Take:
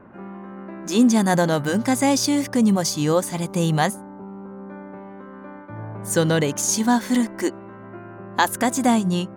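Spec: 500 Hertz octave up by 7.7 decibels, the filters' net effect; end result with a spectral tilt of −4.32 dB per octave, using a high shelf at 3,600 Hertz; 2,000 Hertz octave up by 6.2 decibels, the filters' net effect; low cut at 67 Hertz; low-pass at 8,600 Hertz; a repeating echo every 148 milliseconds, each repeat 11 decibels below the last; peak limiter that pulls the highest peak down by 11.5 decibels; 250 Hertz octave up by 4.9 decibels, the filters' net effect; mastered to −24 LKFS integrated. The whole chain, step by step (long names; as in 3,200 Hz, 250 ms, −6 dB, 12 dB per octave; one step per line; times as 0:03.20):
high-pass filter 67 Hz
low-pass filter 8,600 Hz
parametric band 250 Hz +4 dB
parametric band 500 Hz +7.5 dB
parametric band 2,000 Hz +5.5 dB
high-shelf EQ 3,600 Hz +7.5 dB
brickwall limiter −10 dBFS
repeating echo 148 ms, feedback 28%, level −11 dB
level −4.5 dB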